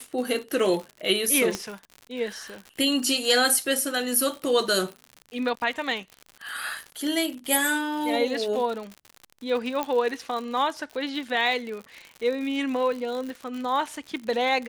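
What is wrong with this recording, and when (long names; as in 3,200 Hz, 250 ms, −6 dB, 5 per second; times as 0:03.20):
surface crackle 89 per second −32 dBFS
0:01.55: click −13 dBFS
0:09.83: click −13 dBFS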